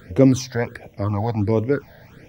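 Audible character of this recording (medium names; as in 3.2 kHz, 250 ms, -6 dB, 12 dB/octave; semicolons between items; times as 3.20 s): phasing stages 8, 1.4 Hz, lowest notch 330–1400 Hz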